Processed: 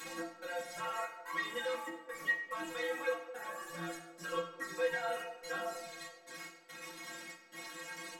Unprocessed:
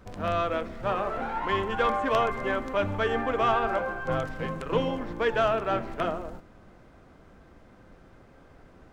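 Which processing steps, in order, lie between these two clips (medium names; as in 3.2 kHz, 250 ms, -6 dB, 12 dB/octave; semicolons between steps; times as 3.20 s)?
one-bit delta coder 64 kbps, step -42 dBFS; RIAA curve recording; reverb removal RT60 1.2 s; treble shelf 4.8 kHz -8.5 dB; peak limiter -30.5 dBFS, peak gain reduction 13.5 dB; upward compressor, threshold -41 dBFS; trance gate "x.xxx.xxx." 66 bpm -60 dB; inharmonic resonator 150 Hz, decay 0.3 s, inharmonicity 0.008; band-passed feedback delay 226 ms, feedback 68%, band-pass 460 Hz, level -14 dB; reverberation RT60 1.0 s, pre-delay 3 ms, DRR -5.5 dB; speed mistake 44.1 kHz file played as 48 kHz; trim +6 dB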